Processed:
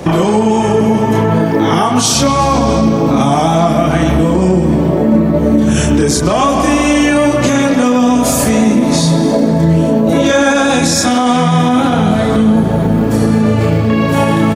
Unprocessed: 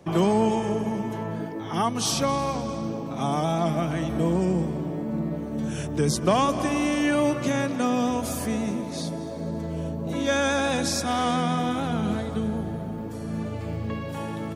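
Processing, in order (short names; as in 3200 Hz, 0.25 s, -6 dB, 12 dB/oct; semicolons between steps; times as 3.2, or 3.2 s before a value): dynamic EQ 7100 Hz, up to +5 dB, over -51 dBFS, Q 3.7; compressor 12:1, threshold -34 dBFS, peak gain reduction 18.5 dB; chorus voices 6, 0.81 Hz, delay 30 ms, depth 2.2 ms; speakerphone echo 0.13 s, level -7 dB; maximiser +31 dB; gain -1 dB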